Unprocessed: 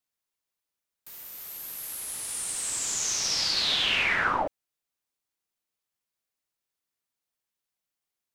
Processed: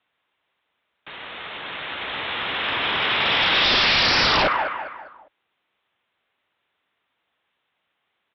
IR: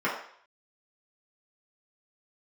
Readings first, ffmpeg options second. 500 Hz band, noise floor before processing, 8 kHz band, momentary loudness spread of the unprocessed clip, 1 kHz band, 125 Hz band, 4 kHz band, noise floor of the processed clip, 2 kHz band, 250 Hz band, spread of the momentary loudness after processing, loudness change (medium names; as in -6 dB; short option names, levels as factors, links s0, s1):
+11.0 dB, under -85 dBFS, -14.5 dB, 16 LU, +10.0 dB, +11.5 dB, +8.0 dB, -76 dBFS, +9.0 dB, +11.0 dB, 18 LU, +7.0 dB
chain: -filter_complex "[0:a]highpass=49,aresample=8000,aresample=44100,acrossover=split=640|2600[s0][s1][s2];[s0]asoftclip=type=tanh:threshold=0.015[s3];[s3][s1][s2]amix=inputs=3:normalize=0,asplit=2[s4][s5];[s5]highpass=f=720:p=1,volume=2.24,asoftclip=type=tanh:threshold=0.211[s6];[s4][s6]amix=inputs=2:normalize=0,lowpass=f=3100:p=1,volume=0.501,aecho=1:1:201|402|603|804:0.2|0.0758|0.0288|0.0109,aresample=11025,aeval=exprs='0.178*sin(PI/2*5.01*val(0)/0.178)':c=same,aresample=44100"